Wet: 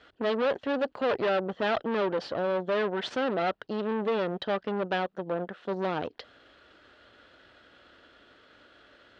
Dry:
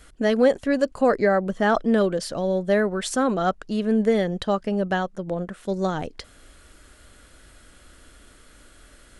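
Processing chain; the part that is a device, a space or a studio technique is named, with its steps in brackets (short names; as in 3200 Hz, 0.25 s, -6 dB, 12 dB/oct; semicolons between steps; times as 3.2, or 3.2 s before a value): guitar amplifier (tube stage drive 27 dB, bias 0.8; tone controls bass -13 dB, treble 0 dB; speaker cabinet 82–3800 Hz, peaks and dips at 110 Hz +5 dB, 1100 Hz -3 dB, 2200 Hz -6 dB); gain +5 dB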